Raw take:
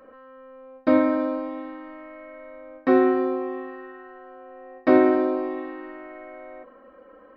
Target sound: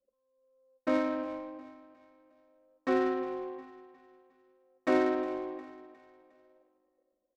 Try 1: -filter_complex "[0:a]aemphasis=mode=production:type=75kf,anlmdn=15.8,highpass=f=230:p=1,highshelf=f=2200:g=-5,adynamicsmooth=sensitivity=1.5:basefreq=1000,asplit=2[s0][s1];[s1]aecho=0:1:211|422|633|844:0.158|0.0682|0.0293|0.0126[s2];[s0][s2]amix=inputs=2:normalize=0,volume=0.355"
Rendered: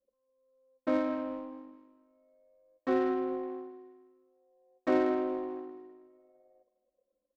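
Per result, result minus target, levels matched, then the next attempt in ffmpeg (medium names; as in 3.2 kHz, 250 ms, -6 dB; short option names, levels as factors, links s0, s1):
echo 147 ms early; 4 kHz band -3.5 dB
-filter_complex "[0:a]aemphasis=mode=production:type=75kf,anlmdn=15.8,highpass=f=230:p=1,highshelf=f=2200:g=-5,adynamicsmooth=sensitivity=1.5:basefreq=1000,asplit=2[s0][s1];[s1]aecho=0:1:358|716|1074|1432:0.158|0.0682|0.0293|0.0126[s2];[s0][s2]amix=inputs=2:normalize=0,volume=0.355"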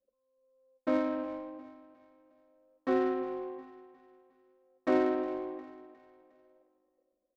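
4 kHz band -3.5 dB
-filter_complex "[0:a]aemphasis=mode=production:type=75kf,anlmdn=15.8,highpass=f=230:p=1,highshelf=f=2200:g=4.5,adynamicsmooth=sensitivity=1.5:basefreq=1000,asplit=2[s0][s1];[s1]aecho=0:1:358|716|1074|1432:0.158|0.0682|0.0293|0.0126[s2];[s0][s2]amix=inputs=2:normalize=0,volume=0.355"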